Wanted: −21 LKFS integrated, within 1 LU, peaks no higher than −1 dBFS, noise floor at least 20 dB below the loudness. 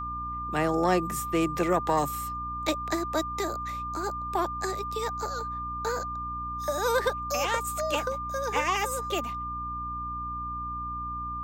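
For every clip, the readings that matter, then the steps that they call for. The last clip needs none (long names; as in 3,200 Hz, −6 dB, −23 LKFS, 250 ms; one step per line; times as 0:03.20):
mains hum 60 Hz; hum harmonics up to 300 Hz; level of the hum −38 dBFS; interfering tone 1,200 Hz; level of the tone −32 dBFS; integrated loudness −29.5 LKFS; sample peak −12.5 dBFS; target loudness −21.0 LKFS
→ mains-hum notches 60/120/180/240/300 Hz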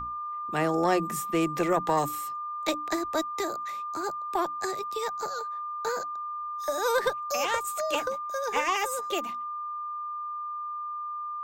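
mains hum none found; interfering tone 1,200 Hz; level of the tone −32 dBFS
→ notch filter 1,200 Hz, Q 30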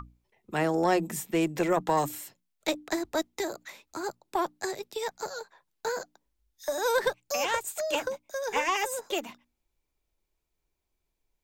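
interfering tone none found; integrated loudness −30.5 LKFS; sample peak −13.0 dBFS; target loudness −21.0 LKFS
→ level +9.5 dB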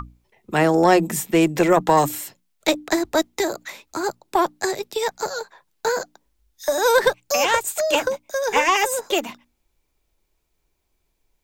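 integrated loudness −21.0 LKFS; sample peak −3.5 dBFS; background noise floor −72 dBFS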